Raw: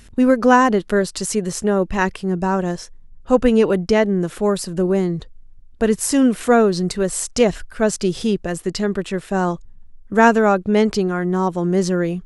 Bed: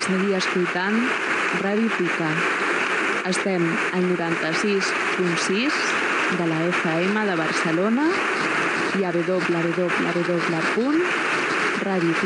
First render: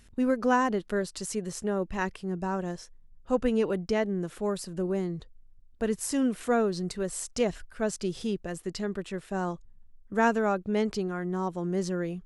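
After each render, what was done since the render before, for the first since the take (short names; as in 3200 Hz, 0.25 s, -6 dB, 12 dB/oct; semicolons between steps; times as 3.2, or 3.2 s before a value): gain -11.5 dB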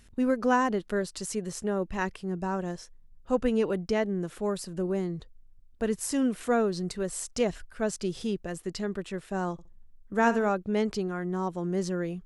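9.52–10.5 flutter echo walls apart 11.2 m, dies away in 0.28 s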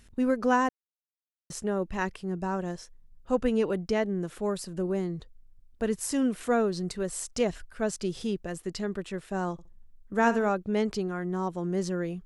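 0.69–1.5 mute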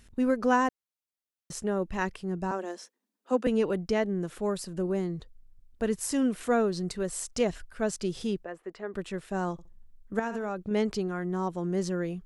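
2.51–3.47 steep high-pass 210 Hz 96 dB/oct; 8.44–8.94 three-band isolator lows -19 dB, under 340 Hz, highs -22 dB, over 2300 Hz; 10.19–10.71 compressor 10:1, threshold -28 dBFS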